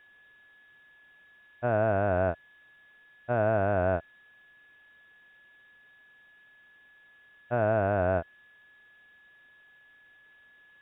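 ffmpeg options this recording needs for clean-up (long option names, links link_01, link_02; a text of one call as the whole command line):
ffmpeg -i in.wav -af "bandreject=frequency=1700:width=30,agate=range=-21dB:threshold=-51dB" out.wav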